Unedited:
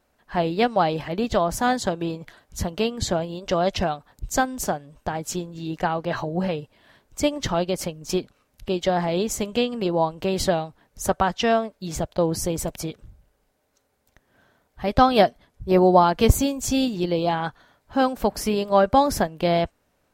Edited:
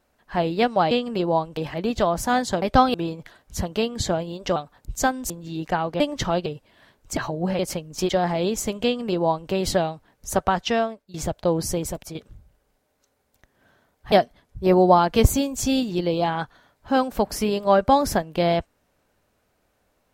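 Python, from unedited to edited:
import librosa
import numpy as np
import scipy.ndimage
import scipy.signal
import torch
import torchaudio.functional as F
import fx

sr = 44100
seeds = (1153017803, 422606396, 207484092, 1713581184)

y = fx.edit(x, sr, fx.cut(start_s=3.58, length_s=0.32),
    fx.cut(start_s=4.64, length_s=0.77),
    fx.swap(start_s=6.11, length_s=0.42, other_s=7.24, other_length_s=0.46),
    fx.cut(start_s=8.2, length_s=0.62),
    fx.duplicate(start_s=9.57, length_s=0.66, to_s=0.91),
    fx.fade_out_to(start_s=11.39, length_s=0.48, floor_db=-17.5),
    fx.fade_out_to(start_s=12.48, length_s=0.4, floor_db=-8.0),
    fx.move(start_s=14.85, length_s=0.32, to_s=1.96), tone=tone)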